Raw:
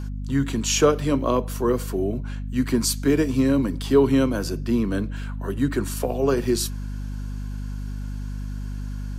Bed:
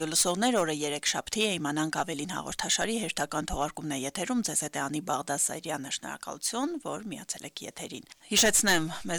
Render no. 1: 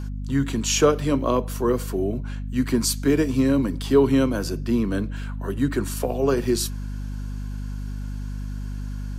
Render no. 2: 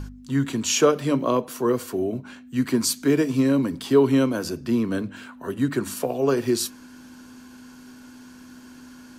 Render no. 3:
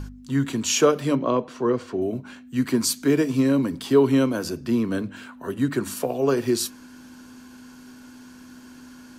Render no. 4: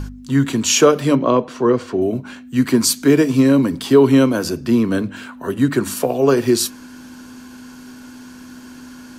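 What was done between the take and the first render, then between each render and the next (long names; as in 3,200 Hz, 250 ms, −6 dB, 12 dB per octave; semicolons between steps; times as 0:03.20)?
no processing that can be heard
hum removal 50 Hz, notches 4
0:01.15–0:02.02: high-frequency loss of the air 130 metres
level +7 dB; brickwall limiter −1 dBFS, peak gain reduction 2 dB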